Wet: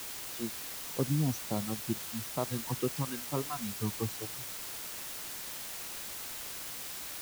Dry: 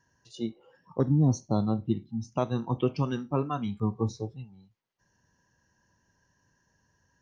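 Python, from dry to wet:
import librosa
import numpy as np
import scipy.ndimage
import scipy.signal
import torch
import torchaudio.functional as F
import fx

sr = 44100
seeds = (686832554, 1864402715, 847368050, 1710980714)

y = fx.dereverb_blind(x, sr, rt60_s=1.6)
y = fx.quant_dither(y, sr, seeds[0], bits=6, dither='triangular')
y = y * librosa.db_to_amplitude(-5.5)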